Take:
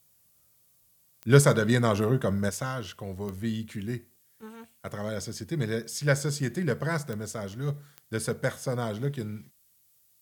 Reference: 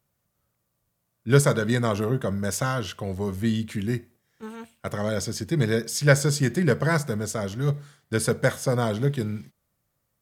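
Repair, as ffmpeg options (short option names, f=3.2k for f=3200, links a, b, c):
-af "adeclick=t=4,agate=range=-21dB:threshold=-56dB,asetnsamples=n=441:p=0,asendcmd='2.49 volume volume 6.5dB',volume=0dB"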